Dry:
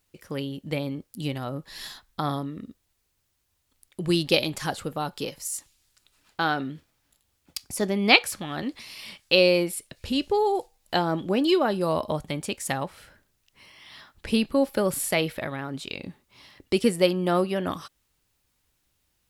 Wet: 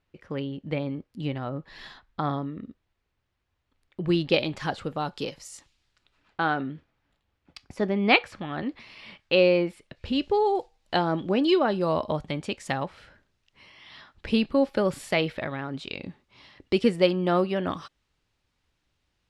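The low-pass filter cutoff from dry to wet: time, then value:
0:04.13 2,600 Hz
0:05.22 5,400 Hz
0:06.41 2,500 Hz
0:09.80 2,500 Hz
0:10.36 4,400 Hz

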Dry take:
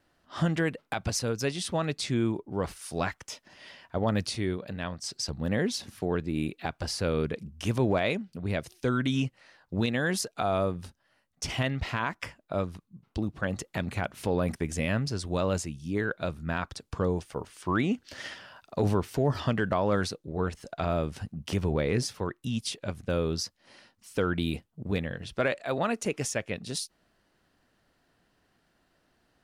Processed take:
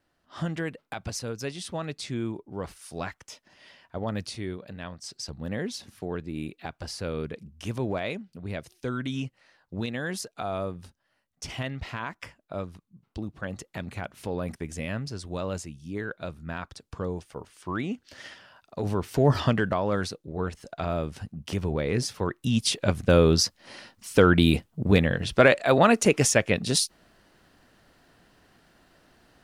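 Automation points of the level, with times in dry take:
0:18.84 −4 dB
0:19.32 +7 dB
0:19.82 −0.5 dB
0:21.82 −0.5 dB
0:22.84 +10 dB

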